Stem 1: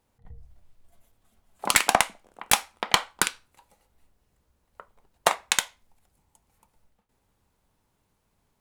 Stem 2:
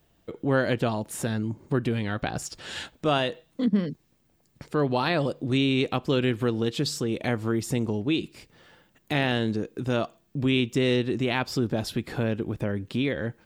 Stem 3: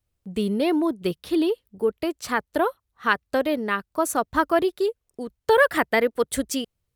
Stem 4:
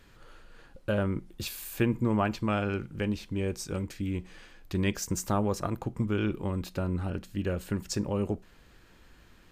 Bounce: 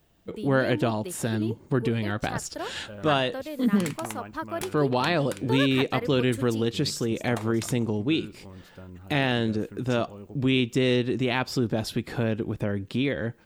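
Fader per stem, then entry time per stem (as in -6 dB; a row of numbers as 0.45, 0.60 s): -17.0, +0.5, -12.5, -13.5 dB; 2.10, 0.00, 0.00, 2.00 s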